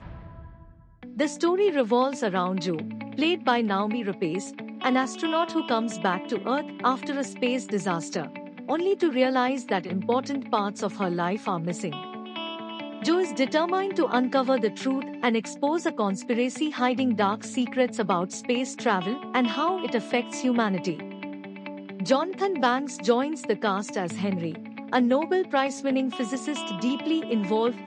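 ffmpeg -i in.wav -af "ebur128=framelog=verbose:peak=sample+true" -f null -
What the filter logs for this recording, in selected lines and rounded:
Integrated loudness:
  I:         -26.3 LUFS
  Threshold: -36.6 LUFS
Loudness range:
  LRA:         2.2 LU
  Threshold: -46.5 LUFS
  LRA low:   -27.7 LUFS
  LRA high:  -25.5 LUFS
Sample peak:
  Peak:       -8.0 dBFS
True peak:
  Peak:       -8.0 dBFS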